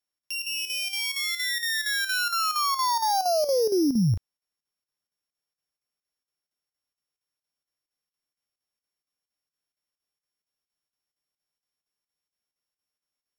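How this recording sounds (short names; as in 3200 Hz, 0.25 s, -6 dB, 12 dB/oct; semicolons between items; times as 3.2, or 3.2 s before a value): a buzz of ramps at a fixed pitch in blocks of 8 samples; chopped level 4.3 Hz, depth 60%, duty 80%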